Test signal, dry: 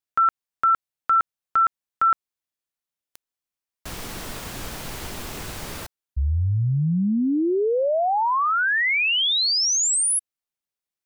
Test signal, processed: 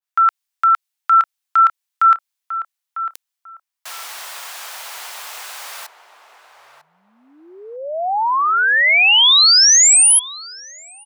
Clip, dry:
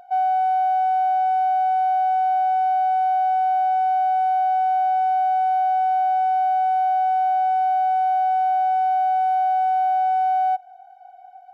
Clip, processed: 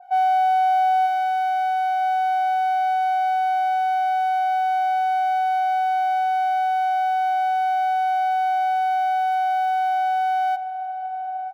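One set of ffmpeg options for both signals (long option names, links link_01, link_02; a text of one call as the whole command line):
ffmpeg -i in.wav -filter_complex "[0:a]highpass=frequency=740:width=0.5412,highpass=frequency=740:width=1.3066,asplit=2[link_01][link_02];[link_02]adelay=949,lowpass=frequency=1000:poles=1,volume=-7dB,asplit=2[link_03][link_04];[link_04]adelay=949,lowpass=frequency=1000:poles=1,volume=0.29,asplit=2[link_05][link_06];[link_06]adelay=949,lowpass=frequency=1000:poles=1,volume=0.29,asplit=2[link_07][link_08];[link_08]adelay=949,lowpass=frequency=1000:poles=1,volume=0.29[link_09];[link_03][link_05][link_07][link_09]amix=inputs=4:normalize=0[link_10];[link_01][link_10]amix=inputs=2:normalize=0,adynamicequalizer=threshold=0.0178:dfrequency=1900:dqfactor=0.7:tfrequency=1900:tqfactor=0.7:attack=5:release=100:ratio=0.375:range=3.5:mode=boostabove:tftype=highshelf,volume=4dB" out.wav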